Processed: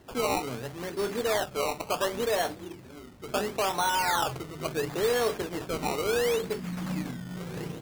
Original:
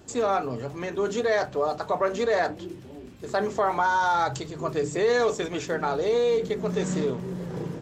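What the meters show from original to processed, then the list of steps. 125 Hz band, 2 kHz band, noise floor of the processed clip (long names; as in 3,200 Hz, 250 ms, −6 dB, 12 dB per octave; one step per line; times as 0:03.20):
−3.5 dB, −3.0 dB, −47 dBFS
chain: noise that follows the level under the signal 14 dB
gain on a spectral selection 0:06.60–0:07.36, 330–5,000 Hz −28 dB
sample-and-hold swept by an LFO 18×, swing 100% 0.72 Hz
level −4 dB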